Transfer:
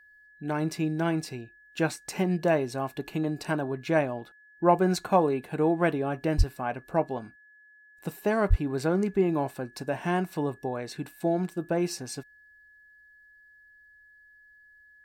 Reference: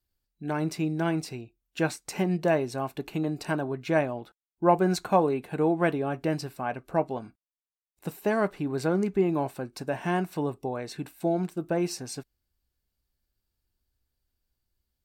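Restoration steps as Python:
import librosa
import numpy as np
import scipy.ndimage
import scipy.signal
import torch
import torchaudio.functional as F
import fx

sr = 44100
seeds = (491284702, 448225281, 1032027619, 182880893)

y = fx.notch(x, sr, hz=1700.0, q=30.0)
y = fx.highpass(y, sr, hz=140.0, slope=24, at=(6.37, 6.49), fade=0.02)
y = fx.highpass(y, sr, hz=140.0, slope=24, at=(8.49, 8.61), fade=0.02)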